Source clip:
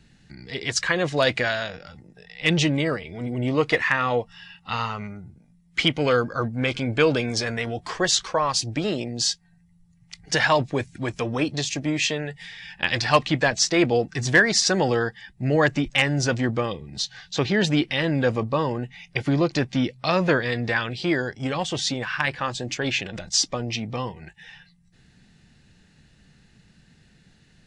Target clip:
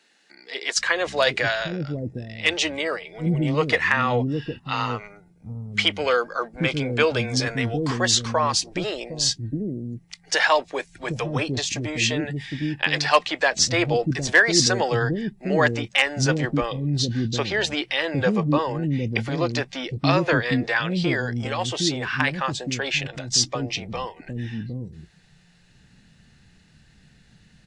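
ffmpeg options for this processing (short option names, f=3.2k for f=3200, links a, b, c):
-filter_complex "[0:a]acrossover=split=360[a][b];[a]adelay=760[c];[c][b]amix=inputs=2:normalize=0,volume=1.5dB"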